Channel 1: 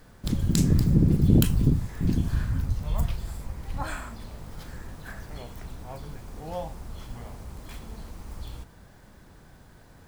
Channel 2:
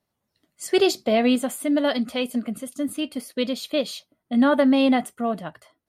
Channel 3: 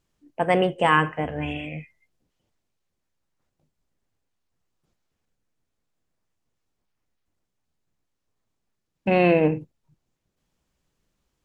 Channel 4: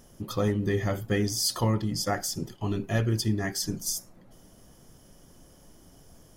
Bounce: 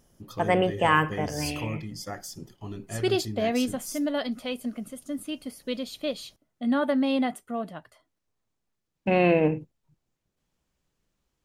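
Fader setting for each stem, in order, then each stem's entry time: mute, -6.5 dB, -2.5 dB, -8.5 dB; mute, 2.30 s, 0.00 s, 0.00 s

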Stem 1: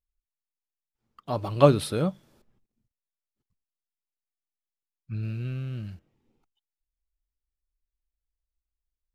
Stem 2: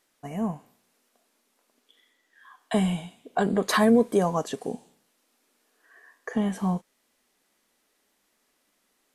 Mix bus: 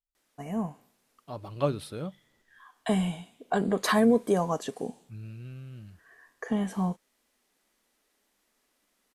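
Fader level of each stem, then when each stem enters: -10.0 dB, -2.5 dB; 0.00 s, 0.15 s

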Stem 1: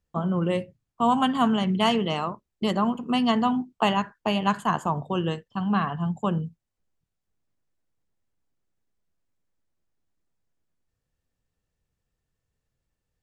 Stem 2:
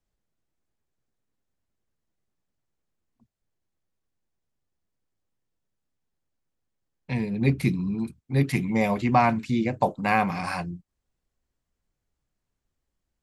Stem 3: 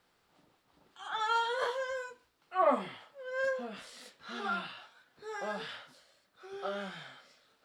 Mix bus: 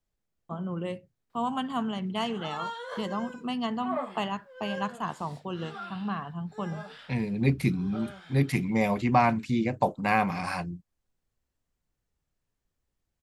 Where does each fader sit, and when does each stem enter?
-8.5 dB, -2.0 dB, -5.5 dB; 0.35 s, 0.00 s, 1.30 s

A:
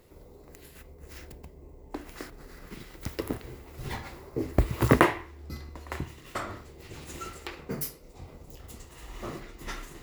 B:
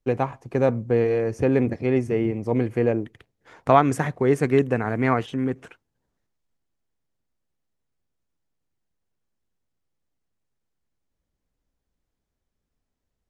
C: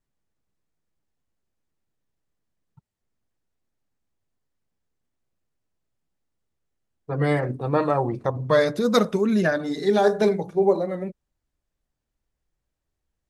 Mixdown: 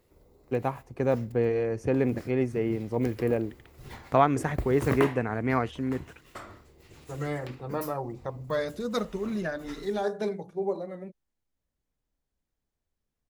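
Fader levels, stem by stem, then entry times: -8.5 dB, -5.0 dB, -10.5 dB; 0.00 s, 0.45 s, 0.00 s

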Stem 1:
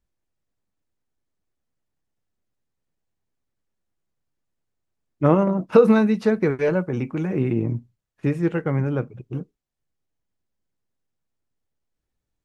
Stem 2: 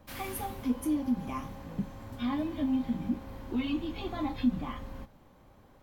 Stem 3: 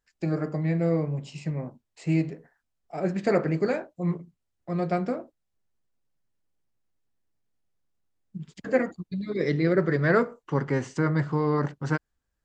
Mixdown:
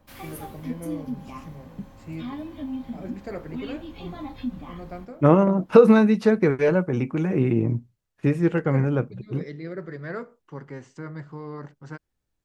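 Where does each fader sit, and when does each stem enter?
+1.0 dB, -3.0 dB, -12.0 dB; 0.00 s, 0.00 s, 0.00 s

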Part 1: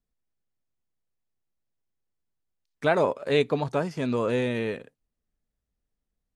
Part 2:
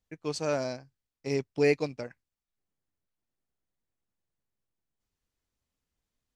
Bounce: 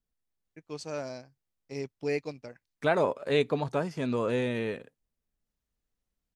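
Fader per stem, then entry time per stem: -3.0 dB, -6.5 dB; 0.00 s, 0.45 s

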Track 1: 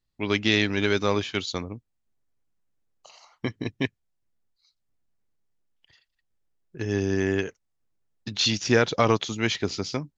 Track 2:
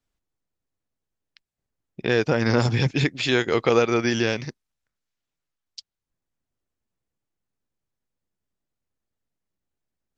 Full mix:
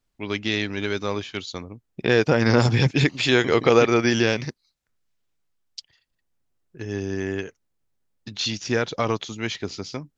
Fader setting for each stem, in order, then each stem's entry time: -3.0 dB, +2.5 dB; 0.00 s, 0.00 s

